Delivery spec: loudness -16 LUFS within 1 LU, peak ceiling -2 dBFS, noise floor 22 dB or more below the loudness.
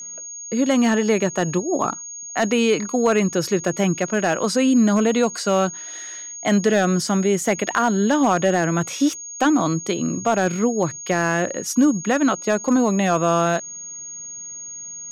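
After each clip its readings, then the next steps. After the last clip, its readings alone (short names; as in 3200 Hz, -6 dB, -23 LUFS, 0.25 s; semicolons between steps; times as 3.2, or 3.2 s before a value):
clipped 0.7%; flat tops at -9.0 dBFS; steady tone 6600 Hz; tone level -32 dBFS; loudness -20.0 LUFS; peak -9.0 dBFS; loudness target -16.0 LUFS
-> clip repair -9 dBFS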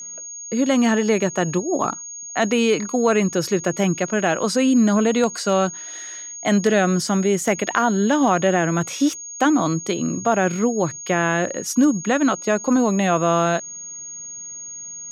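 clipped 0.0%; steady tone 6600 Hz; tone level -32 dBFS
-> notch 6600 Hz, Q 30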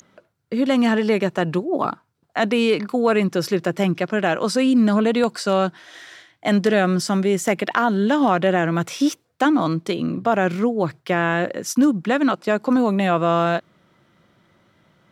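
steady tone none; loudness -20.0 LUFS; peak -4.5 dBFS; loudness target -16.0 LUFS
-> gain +4 dB; limiter -2 dBFS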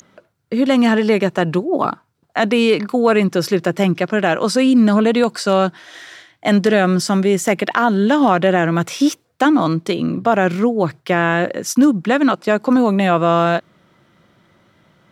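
loudness -16.5 LUFS; peak -2.0 dBFS; noise floor -62 dBFS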